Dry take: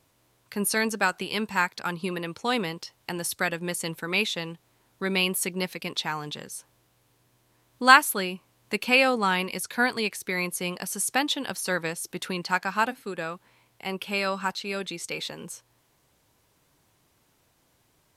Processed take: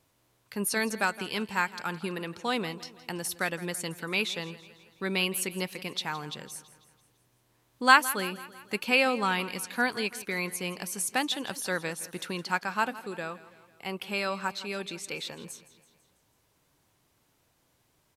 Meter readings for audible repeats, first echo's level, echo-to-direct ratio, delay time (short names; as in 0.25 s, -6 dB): 4, -17.0 dB, -15.5 dB, 0.165 s